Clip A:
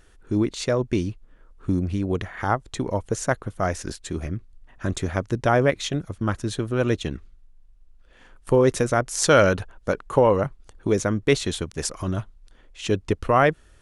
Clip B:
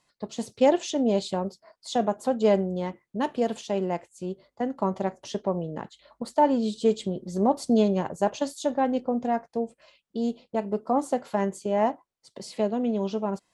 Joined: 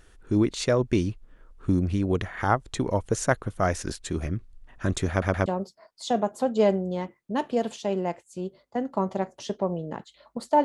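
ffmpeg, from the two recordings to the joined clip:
-filter_complex "[0:a]apad=whole_dur=10.64,atrim=end=10.64,asplit=3[a][b][c];[a]atrim=end=5.222[d];[b]atrim=start=5.098:end=5.222[e];[c]atrim=start=5.098:end=5.222[f];[1:a]atrim=start=1.308:end=6.49[g];[d][e]acrossfade=d=0.004:c1=hsin:c2=hsin[h];[h][f]acrossfade=d=0.004:c1=hsin:c2=hsin[i];[i][g]acrossfade=d=0.004:c1=hsin:c2=hsin"

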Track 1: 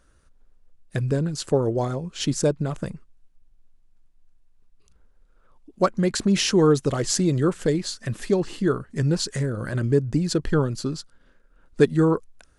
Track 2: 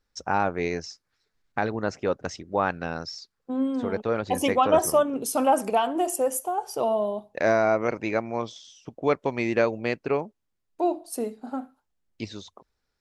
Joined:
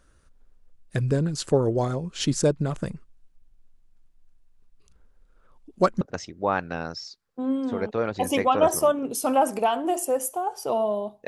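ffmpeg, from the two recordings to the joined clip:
-filter_complex "[0:a]apad=whole_dur=11.27,atrim=end=11.27,atrim=end=6.012[a];[1:a]atrim=start=2.118:end=7.38[b];[a][b]acrossfade=d=0.004:c1=hsin:c2=hsin"

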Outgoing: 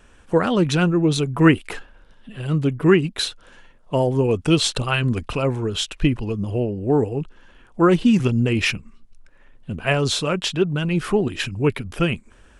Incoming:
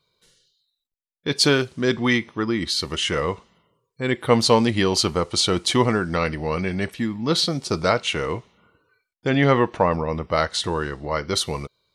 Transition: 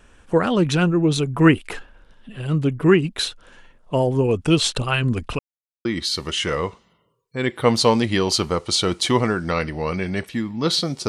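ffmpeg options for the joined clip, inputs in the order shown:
-filter_complex "[0:a]apad=whole_dur=11.08,atrim=end=11.08,asplit=2[a][b];[a]atrim=end=5.39,asetpts=PTS-STARTPTS,afade=t=out:st=5.386:d=0.004:c=hsin[c];[b]atrim=start=5.39:end=5.85,asetpts=PTS-STARTPTS,volume=0[d];[1:a]atrim=start=2.5:end=7.73,asetpts=PTS-STARTPTS,afade=t=in:d=0.004:c=hsin[e];[c][d][e]concat=n=3:v=0:a=1"

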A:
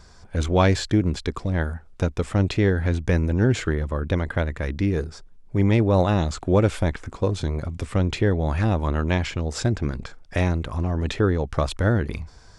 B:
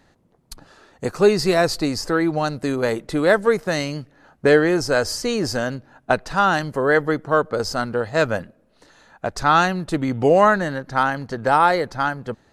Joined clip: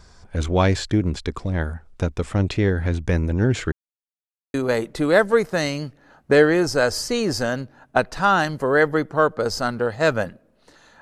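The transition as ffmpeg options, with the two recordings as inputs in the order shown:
-filter_complex "[0:a]apad=whole_dur=11.01,atrim=end=11.01,asplit=2[a][b];[a]atrim=end=3.72,asetpts=PTS-STARTPTS,afade=t=out:st=3.716:d=0.004:c=hsin[c];[b]atrim=start=3.72:end=4.54,asetpts=PTS-STARTPTS,volume=0[d];[1:a]atrim=start=2.68:end=9.15,asetpts=PTS-STARTPTS,afade=t=in:d=0.004:c=hsin[e];[c][d][e]concat=n=3:v=0:a=1"

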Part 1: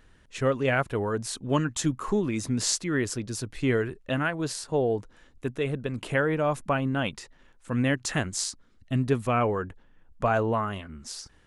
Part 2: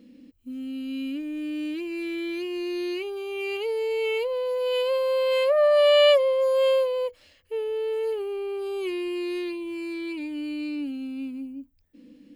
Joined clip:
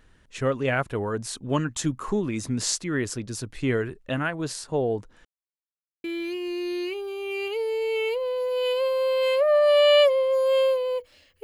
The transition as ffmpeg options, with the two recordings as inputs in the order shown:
-filter_complex "[0:a]apad=whole_dur=11.43,atrim=end=11.43,asplit=2[a][b];[a]atrim=end=5.25,asetpts=PTS-STARTPTS,afade=t=out:st=5.246:d=0.004:c=hsin[c];[b]atrim=start=5.25:end=6.04,asetpts=PTS-STARTPTS,volume=0[d];[1:a]atrim=start=2.13:end=7.52,asetpts=PTS-STARTPTS,afade=t=in:d=0.004:c=hsin[e];[c][d][e]concat=n=3:v=0:a=1"

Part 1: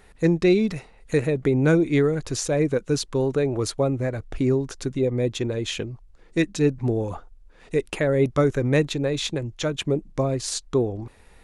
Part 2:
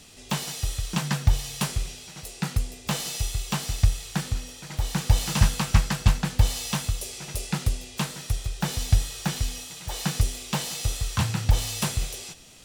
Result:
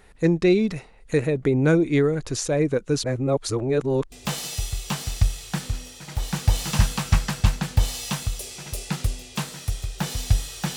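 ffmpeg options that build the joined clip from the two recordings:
-filter_complex "[0:a]apad=whole_dur=10.76,atrim=end=10.76,asplit=2[a][b];[a]atrim=end=3.042[c];[b]atrim=start=3.038:end=4.122,asetpts=PTS-STARTPTS,areverse[d];[1:a]atrim=start=2.738:end=9.38[e];[c][d]acrossfade=d=0.004:c1=hsin:c2=hsin[f];[f][e]acrossfade=d=0.004:c1=hsin:c2=hsin"

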